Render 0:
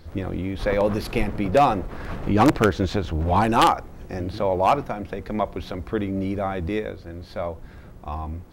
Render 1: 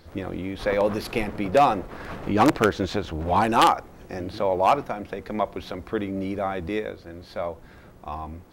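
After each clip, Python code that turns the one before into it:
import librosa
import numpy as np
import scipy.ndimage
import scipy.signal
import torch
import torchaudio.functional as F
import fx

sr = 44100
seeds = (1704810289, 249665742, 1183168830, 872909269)

y = fx.low_shelf(x, sr, hz=150.0, db=-10.0)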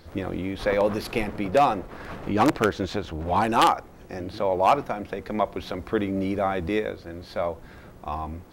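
y = fx.rider(x, sr, range_db=4, speed_s=2.0)
y = y * librosa.db_to_amplitude(-1.5)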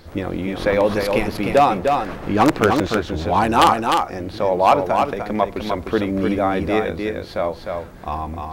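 y = x + 10.0 ** (-4.5 / 20.0) * np.pad(x, (int(303 * sr / 1000.0), 0))[:len(x)]
y = y * librosa.db_to_amplitude(5.0)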